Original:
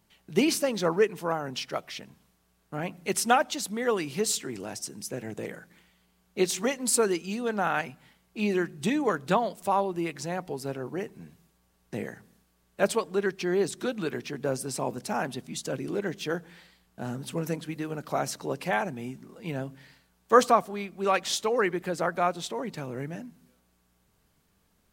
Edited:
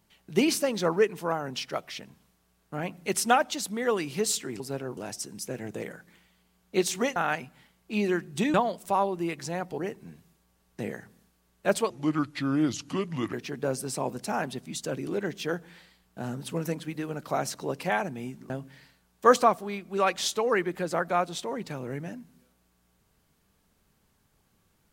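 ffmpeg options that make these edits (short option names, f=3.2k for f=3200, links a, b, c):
-filter_complex "[0:a]asplit=9[a][b][c][d][e][f][g][h][i];[a]atrim=end=4.602[j];[b]atrim=start=10.548:end=10.922[k];[c]atrim=start=4.598:end=6.792[l];[d]atrim=start=7.618:end=9.002[m];[e]atrim=start=9.308:end=10.552[n];[f]atrim=start=10.918:end=13.044[o];[g]atrim=start=13.04:end=14.14,asetpts=PTS-STARTPTS,asetrate=33957,aresample=44100[p];[h]atrim=start=14.136:end=19.312[q];[i]atrim=start=19.568[r];[j][k]acrossfade=d=0.004:c1=hsin:c2=hsin[s];[s][l]acrossfade=d=0.004:c1=hsin:c2=hsin[t];[t][m]acrossfade=d=0.004:c1=hsin:c2=hsin[u];[u][n]acrossfade=d=0.004:c1=hsin:c2=hsin[v];[v][o]acrossfade=d=0.004:c1=hsin:c2=hsin[w];[w][p]acrossfade=d=0.004:c1=hsin:c2=hsin[x];[x][q]acrossfade=d=0.004:c1=hsin:c2=hsin[y];[y][r]acrossfade=d=0.004:c1=hsin:c2=hsin"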